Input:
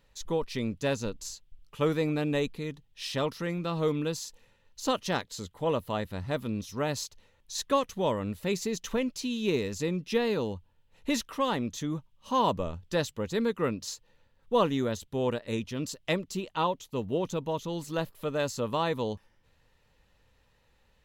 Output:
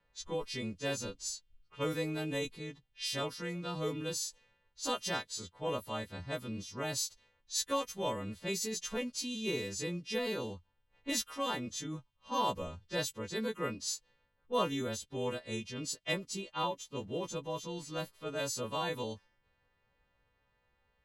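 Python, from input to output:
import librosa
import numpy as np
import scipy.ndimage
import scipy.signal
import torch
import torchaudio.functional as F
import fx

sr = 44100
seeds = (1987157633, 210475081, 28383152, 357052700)

y = fx.freq_snap(x, sr, grid_st=2)
y = fx.env_lowpass(y, sr, base_hz=2000.0, full_db=-25.5)
y = y * 10.0 ** (-7.0 / 20.0)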